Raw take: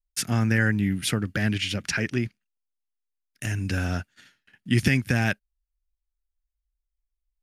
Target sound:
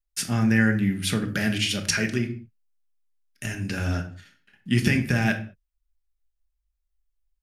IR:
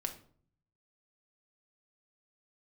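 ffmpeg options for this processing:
-filter_complex "[0:a]asettb=1/sr,asplit=3[a][b][c];[a]atrim=end=1.284[d];[b]atrim=start=1.28:end=2.18,asetpts=PTS-STARTPTS,afade=t=in:d=0.004:c=qsin,afade=t=out:st=0.896:d=0.004:c=qsin,highshelf=f=4.5k:g=10[e];[c]atrim=start=2.176[f];[d][e]acrossfade=d=0.004:c1=hsin:c2=qsin[g];[g][f]acrossfade=d=0.004:c1=qsin:c2=hsin[h];[1:a]atrim=start_sample=2205,afade=t=out:st=0.27:d=0.01,atrim=end_sample=12348[i];[h][i]afir=irnorm=-1:irlink=0"

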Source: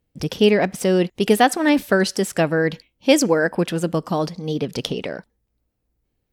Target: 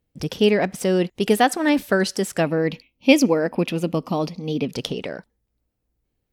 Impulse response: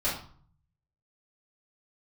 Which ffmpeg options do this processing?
-filter_complex "[0:a]asettb=1/sr,asplit=3[a][b][c];[a]atrim=end=2.464[d];[b]atrim=start=2.46:end=4.72,asetpts=PTS-STARTPTS,afade=t=in:d=0.004:c=qsin,afade=t=out:st=2.256:d=0.004:c=qsin,equalizer=f=250:t=o:w=0.33:g=8,equalizer=f=1.6k:t=o:w=0.33:g=-11,equalizer=f=2.5k:t=o:w=0.33:g=9,equalizer=f=8k:t=o:w=0.33:g=-10[e];[c]atrim=start=4.716[f];[d][e]acrossfade=d=0.004:c1=hsin:c2=qsin[g];[g][f]acrossfade=d=0.004:c1=qsin:c2=hsin,volume=-2dB"

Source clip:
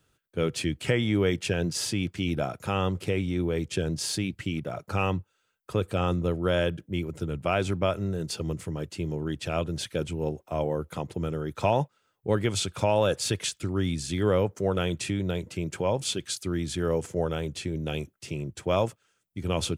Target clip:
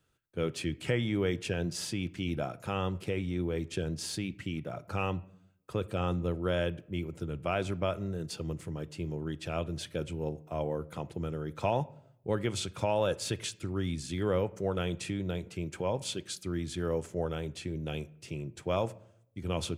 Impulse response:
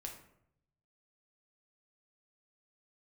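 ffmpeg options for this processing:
-filter_complex "[0:a]asplit=2[a][b];[1:a]atrim=start_sample=2205,lowpass=4.7k[c];[b][c]afir=irnorm=-1:irlink=0,volume=-8.5dB[d];[a][d]amix=inputs=2:normalize=0,volume=-7dB"

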